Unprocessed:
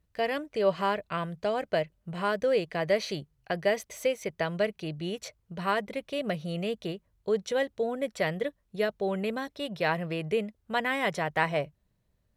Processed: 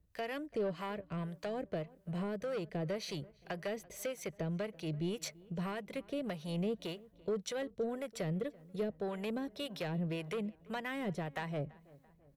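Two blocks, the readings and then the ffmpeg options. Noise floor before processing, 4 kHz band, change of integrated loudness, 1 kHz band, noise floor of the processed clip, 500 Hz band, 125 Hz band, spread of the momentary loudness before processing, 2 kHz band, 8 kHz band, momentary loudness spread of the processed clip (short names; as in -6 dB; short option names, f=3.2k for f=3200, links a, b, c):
-74 dBFS, -9.0 dB, -9.0 dB, -13.0 dB, -66 dBFS, -10.0 dB, -2.5 dB, 8 LU, -13.0 dB, -3.5 dB, 5 LU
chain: -filter_complex "[0:a]highshelf=f=9k:g=6.5,acrossover=split=400[a][b];[b]acompressor=threshold=-37dB:ratio=6[c];[a][c]amix=inputs=2:normalize=0,asoftclip=type=tanh:threshold=-28dB,acrossover=split=620[d][e];[d]aeval=exprs='val(0)*(1-0.7/2+0.7/2*cos(2*PI*1.8*n/s))':c=same[f];[e]aeval=exprs='val(0)*(1-0.7/2-0.7/2*cos(2*PI*1.8*n/s))':c=same[g];[f][g]amix=inputs=2:normalize=0,asplit=2[h][i];[i]adelay=336,lowpass=f=2.1k:p=1,volume=-22dB,asplit=2[j][k];[k]adelay=336,lowpass=f=2.1k:p=1,volume=0.53,asplit=2[l][m];[m]adelay=336,lowpass=f=2.1k:p=1,volume=0.53,asplit=2[n][o];[o]adelay=336,lowpass=f=2.1k:p=1,volume=0.53[p];[h][j][l][n][p]amix=inputs=5:normalize=0,volume=1.5dB"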